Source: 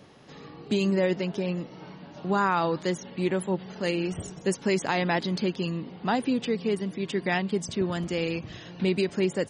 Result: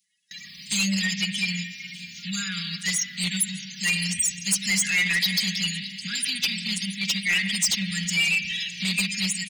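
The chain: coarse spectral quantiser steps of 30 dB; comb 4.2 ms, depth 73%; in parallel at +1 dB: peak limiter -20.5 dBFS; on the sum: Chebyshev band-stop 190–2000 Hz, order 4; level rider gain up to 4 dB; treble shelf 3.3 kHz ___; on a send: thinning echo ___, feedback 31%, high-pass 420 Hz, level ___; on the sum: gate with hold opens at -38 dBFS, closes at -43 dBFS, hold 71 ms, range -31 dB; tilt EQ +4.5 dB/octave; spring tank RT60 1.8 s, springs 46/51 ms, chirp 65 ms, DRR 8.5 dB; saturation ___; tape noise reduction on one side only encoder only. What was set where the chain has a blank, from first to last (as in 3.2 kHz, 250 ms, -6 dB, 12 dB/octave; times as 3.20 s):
-2.5 dB, 611 ms, -20 dB, -17 dBFS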